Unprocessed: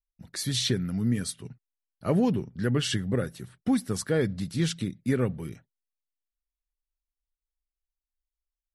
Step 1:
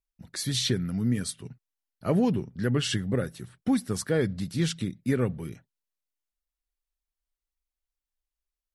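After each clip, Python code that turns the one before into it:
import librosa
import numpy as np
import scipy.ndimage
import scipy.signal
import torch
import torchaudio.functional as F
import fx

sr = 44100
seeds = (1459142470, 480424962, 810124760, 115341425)

y = fx.wow_flutter(x, sr, seeds[0], rate_hz=2.1, depth_cents=26.0)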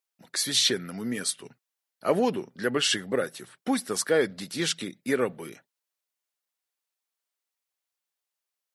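y = scipy.signal.sosfilt(scipy.signal.butter(2, 420.0, 'highpass', fs=sr, output='sos'), x)
y = F.gain(torch.from_numpy(y), 6.0).numpy()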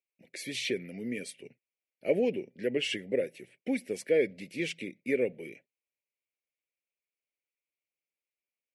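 y = fx.curve_eq(x, sr, hz=(150.0, 550.0, 1200.0, 2300.0, 3700.0), db=(0, 6, -27, 11, -9))
y = F.gain(torch.from_numpy(y), -7.0).numpy()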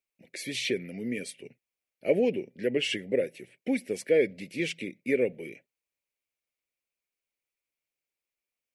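y = fx.low_shelf(x, sr, hz=61.0, db=6.0)
y = F.gain(torch.from_numpy(y), 2.5).numpy()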